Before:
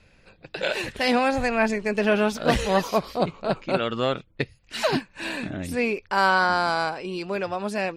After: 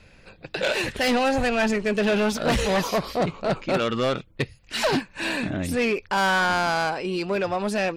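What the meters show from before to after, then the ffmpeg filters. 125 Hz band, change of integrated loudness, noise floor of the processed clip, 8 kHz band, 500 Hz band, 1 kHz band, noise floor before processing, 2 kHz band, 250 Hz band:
+2.0 dB, +0.5 dB, −54 dBFS, +4.5 dB, +0.5 dB, −1.0 dB, −59 dBFS, +0.5 dB, +1.5 dB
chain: -af "asoftclip=type=tanh:threshold=-22dB,volume=5dB"

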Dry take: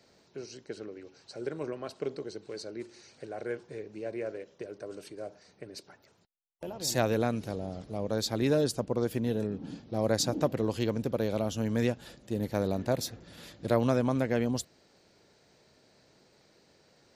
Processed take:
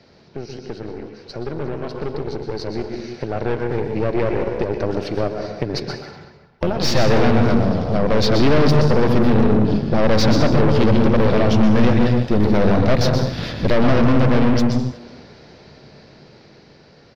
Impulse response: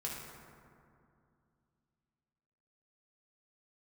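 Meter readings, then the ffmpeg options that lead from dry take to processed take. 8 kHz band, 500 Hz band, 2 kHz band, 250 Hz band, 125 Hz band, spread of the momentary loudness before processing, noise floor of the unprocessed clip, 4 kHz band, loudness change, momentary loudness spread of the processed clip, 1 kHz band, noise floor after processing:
+2.5 dB, +12.5 dB, +15.0 dB, +15.0 dB, +16.5 dB, 17 LU, −65 dBFS, +12.5 dB, +13.5 dB, 15 LU, +15.0 dB, −49 dBFS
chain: -filter_complex "[0:a]asplit=2[link_01][link_02];[1:a]atrim=start_sample=2205,afade=type=out:start_time=0.27:duration=0.01,atrim=end_sample=12348,adelay=123[link_03];[link_02][link_03]afir=irnorm=-1:irlink=0,volume=-6dB[link_04];[link_01][link_04]amix=inputs=2:normalize=0,aeval=exprs='(tanh(56.2*val(0)+0.75)-tanh(0.75))/56.2':channel_layout=same,bass=frequency=250:gain=5,treble=frequency=4000:gain=-11,asplit=2[link_05][link_06];[link_06]acompressor=threshold=-45dB:ratio=6,volume=1.5dB[link_07];[link_05][link_07]amix=inputs=2:normalize=0,highshelf=frequency=6500:width_type=q:width=3:gain=-7.5,asplit=2[link_08][link_09];[link_09]adelay=370,highpass=300,lowpass=3400,asoftclip=type=hard:threshold=-33.5dB,volume=-17dB[link_10];[link_08][link_10]amix=inputs=2:normalize=0,dynaudnorm=framelen=1000:gausssize=7:maxgain=10dB,volume=8.5dB"

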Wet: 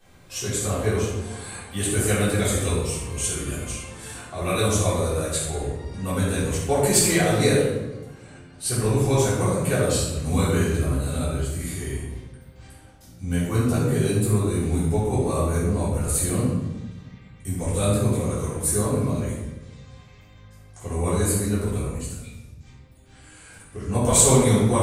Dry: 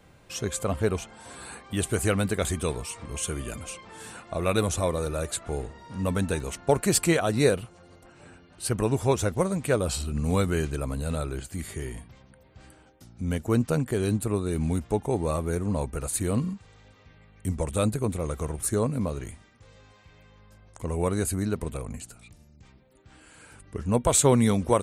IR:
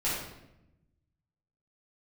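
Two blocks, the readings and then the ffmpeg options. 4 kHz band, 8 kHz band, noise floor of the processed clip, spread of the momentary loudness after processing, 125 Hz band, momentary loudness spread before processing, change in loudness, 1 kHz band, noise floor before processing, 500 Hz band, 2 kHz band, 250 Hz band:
+5.5 dB, +7.0 dB, −48 dBFS, 16 LU, +5.5 dB, 15 LU, +4.5 dB, +2.5 dB, −56 dBFS, +3.0 dB, +4.0 dB, +3.5 dB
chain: -filter_complex "[0:a]highshelf=frequency=3900:gain=8.5[link_01];[1:a]atrim=start_sample=2205,asetrate=36603,aresample=44100[link_02];[link_01][link_02]afir=irnorm=-1:irlink=0,volume=-7.5dB"

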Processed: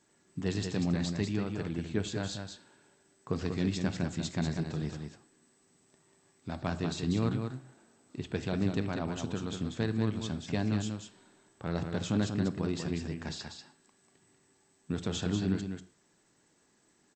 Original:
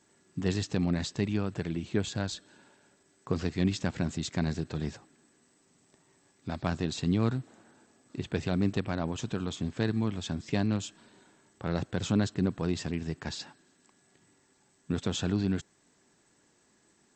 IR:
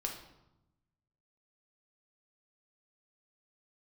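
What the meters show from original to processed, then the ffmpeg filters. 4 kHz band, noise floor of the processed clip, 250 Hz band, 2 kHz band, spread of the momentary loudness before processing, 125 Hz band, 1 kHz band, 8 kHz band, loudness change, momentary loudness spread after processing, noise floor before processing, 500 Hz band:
−2.0 dB, −69 dBFS, −1.5 dB, −2.0 dB, 10 LU, −1.5 dB, −2.0 dB, −2.0 dB, −2.0 dB, 12 LU, −68 dBFS, −1.5 dB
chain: -filter_complex "[0:a]aecho=1:1:191:0.501,asplit=2[link_01][link_02];[1:a]atrim=start_sample=2205,atrim=end_sample=6174[link_03];[link_02][link_03]afir=irnorm=-1:irlink=0,volume=-6.5dB[link_04];[link_01][link_04]amix=inputs=2:normalize=0,volume=-6dB"

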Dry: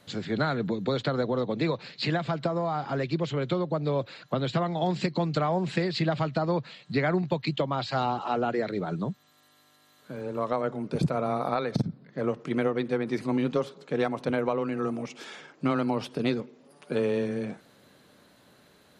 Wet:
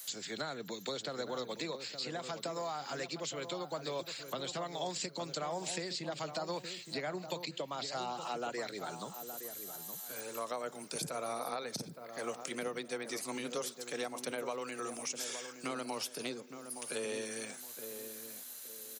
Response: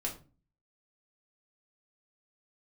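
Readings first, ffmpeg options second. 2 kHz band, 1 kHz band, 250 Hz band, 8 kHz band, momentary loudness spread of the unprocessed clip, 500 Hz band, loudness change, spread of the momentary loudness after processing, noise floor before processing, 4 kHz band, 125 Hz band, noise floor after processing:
−7.5 dB, −9.5 dB, −15.5 dB, can't be measured, 6 LU, −11.0 dB, −10.5 dB, 5 LU, −61 dBFS, −2.5 dB, −20.0 dB, −50 dBFS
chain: -filter_complex "[0:a]aderivative,acrossover=split=120|720[link_01][link_02][link_03];[link_03]acompressor=threshold=-54dB:ratio=6[link_04];[link_01][link_02][link_04]amix=inputs=3:normalize=0,aexciter=amount=3.1:drive=3.1:freq=5500,asplit=2[link_05][link_06];[link_06]adelay=867,lowpass=frequency=1100:poles=1,volume=-8dB,asplit=2[link_07][link_08];[link_08]adelay=867,lowpass=frequency=1100:poles=1,volume=0.34,asplit=2[link_09][link_10];[link_10]adelay=867,lowpass=frequency=1100:poles=1,volume=0.34,asplit=2[link_11][link_12];[link_12]adelay=867,lowpass=frequency=1100:poles=1,volume=0.34[link_13];[link_05][link_07][link_09][link_11][link_13]amix=inputs=5:normalize=0,volume=12.5dB"

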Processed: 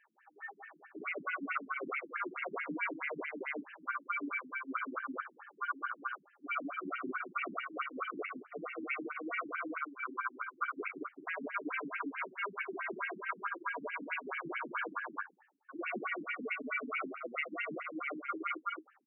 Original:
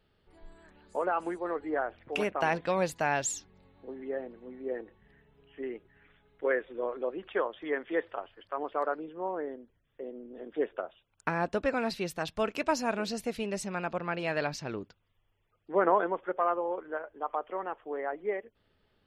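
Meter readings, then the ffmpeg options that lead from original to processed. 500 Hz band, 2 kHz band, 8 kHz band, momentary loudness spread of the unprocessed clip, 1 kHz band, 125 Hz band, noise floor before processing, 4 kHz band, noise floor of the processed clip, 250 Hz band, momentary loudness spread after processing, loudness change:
−14.0 dB, +0.5 dB, below −35 dB, 13 LU, −5.5 dB, −18.0 dB, −74 dBFS, −8.5 dB, −68 dBFS, −6.5 dB, 6 LU, −6.0 dB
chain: -filter_complex "[0:a]afftfilt=real='real(if(between(b,1,1008),(2*floor((b-1)/24)+1)*24-b,b),0)':imag='imag(if(between(b,1,1008),(2*floor((b-1)/24)+1)*24-b,b),0)*if(between(b,1,1008),-1,1)':win_size=2048:overlap=0.75,dynaudnorm=framelen=250:gausssize=11:maxgain=9dB,asplit=2[link_01][link_02];[link_02]aeval=exprs='(mod(2.51*val(0)+1,2)-1)/2.51':channel_layout=same,volume=-9.5dB[link_03];[link_01][link_03]amix=inputs=2:normalize=0,aeval=exprs='val(0)*sin(2*PI*1300*n/s)':channel_layout=same,asplit=2[link_04][link_05];[link_05]adelay=32,volume=-11dB[link_06];[link_04][link_06]amix=inputs=2:normalize=0,aecho=1:1:66|108|180|397:0.316|0.188|0.376|0.335,areverse,acompressor=threshold=-34dB:ratio=12,areverse,afftfilt=real='re*between(b*sr/1024,230*pow(2200/230,0.5+0.5*sin(2*PI*4.6*pts/sr))/1.41,230*pow(2200/230,0.5+0.5*sin(2*PI*4.6*pts/sr))*1.41)':imag='im*between(b*sr/1024,230*pow(2200/230,0.5+0.5*sin(2*PI*4.6*pts/sr))/1.41,230*pow(2200/230,0.5+0.5*sin(2*PI*4.6*pts/sr))*1.41)':win_size=1024:overlap=0.75,volume=5.5dB"

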